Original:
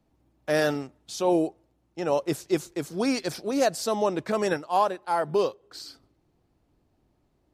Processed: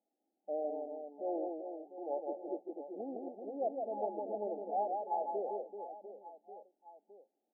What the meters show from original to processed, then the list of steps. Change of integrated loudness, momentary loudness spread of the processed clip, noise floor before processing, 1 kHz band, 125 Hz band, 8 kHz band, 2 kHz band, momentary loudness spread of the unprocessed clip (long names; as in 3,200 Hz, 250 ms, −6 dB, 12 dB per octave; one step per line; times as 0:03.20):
−13.0 dB, 16 LU, −70 dBFS, −10.0 dB, below −25 dB, below −40 dB, below −40 dB, 14 LU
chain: first difference
reverse bouncing-ball delay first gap 160 ms, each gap 1.4×, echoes 5
brick-wall band-pass 190–870 Hz
level +9 dB